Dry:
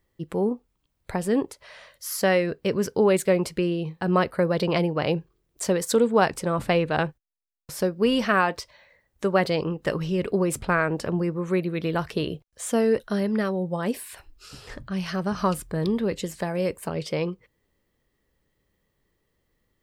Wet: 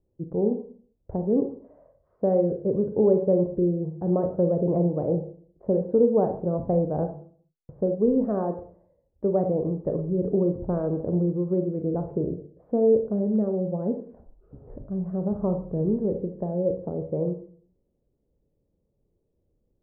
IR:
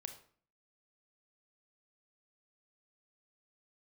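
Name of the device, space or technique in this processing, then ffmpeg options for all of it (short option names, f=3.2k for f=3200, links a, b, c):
next room: -filter_complex "[0:a]lowpass=f=640:w=0.5412,lowpass=f=640:w=1.3066[a];[1:a]atrim=start_sample=2205[b];[a][b]afir=irnorm=-1:irlink=0,volume=4.5dB"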